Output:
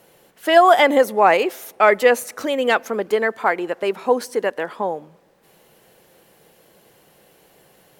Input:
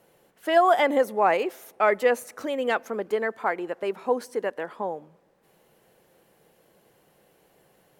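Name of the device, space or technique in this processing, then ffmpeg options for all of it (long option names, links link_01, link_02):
presence and air boost: -af "equalizer=frequency=4100:width_type=o:width=2:gain=4,highshelf=frequency=11000:gain=5.5,volume=6.5dB"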